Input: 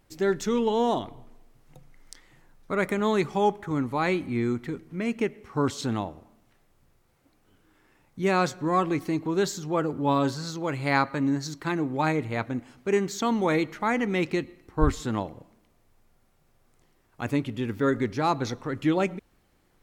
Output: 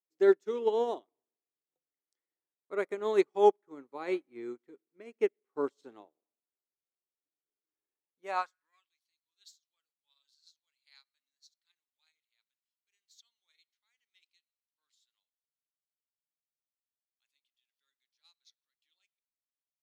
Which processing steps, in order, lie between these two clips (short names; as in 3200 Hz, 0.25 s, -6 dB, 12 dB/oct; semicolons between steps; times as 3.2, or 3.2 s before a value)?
high-pass sweep 390 Hz -> 3800 Hz, 8.12–8.9; upward expander 2.5:1, over -39 dBFS; gain -3 dB